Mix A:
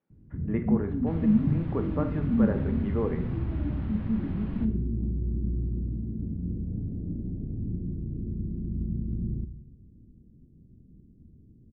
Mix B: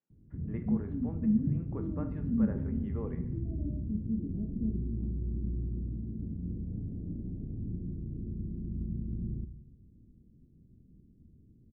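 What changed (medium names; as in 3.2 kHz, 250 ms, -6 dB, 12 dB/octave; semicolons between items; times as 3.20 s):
speech -11.5 dB; first sound -5.0 dB; second sound: muted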